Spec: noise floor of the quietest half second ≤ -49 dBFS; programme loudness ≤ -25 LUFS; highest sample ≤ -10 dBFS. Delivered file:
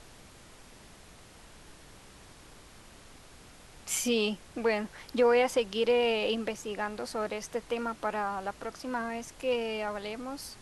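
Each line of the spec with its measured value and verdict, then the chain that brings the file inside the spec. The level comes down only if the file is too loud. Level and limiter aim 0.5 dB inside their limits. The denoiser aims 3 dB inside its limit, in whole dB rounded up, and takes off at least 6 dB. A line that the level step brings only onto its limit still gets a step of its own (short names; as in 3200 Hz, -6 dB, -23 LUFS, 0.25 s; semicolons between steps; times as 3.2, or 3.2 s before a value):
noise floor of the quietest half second -53 dBFS: OK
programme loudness -31.0 LUFS: OK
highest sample -15.0 dBFS: OK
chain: none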